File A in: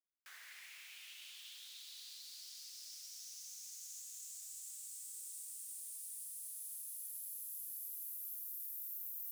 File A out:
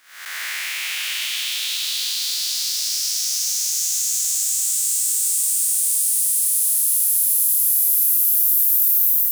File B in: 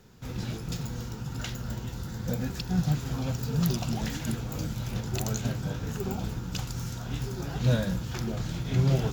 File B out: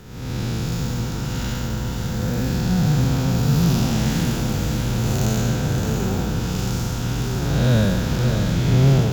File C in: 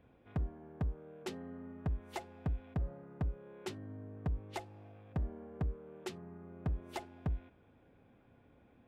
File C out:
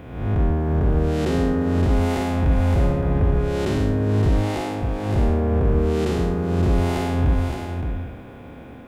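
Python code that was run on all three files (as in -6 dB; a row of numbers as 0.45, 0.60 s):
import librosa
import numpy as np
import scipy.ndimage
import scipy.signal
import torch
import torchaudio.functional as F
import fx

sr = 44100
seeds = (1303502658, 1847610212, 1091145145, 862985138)

p1 = fx.spec_blur(x, sr, span_ms=295.0)
p2 = p1 + fx.echo_single(p1, sr, ms=567, db=-6.5, dry=0)
y = p2 * 10.0 ** (-20 / 20.0) / np.sqrt(np.mean(np.square(p2)))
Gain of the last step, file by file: +30.0, +12.0, +26.0 dB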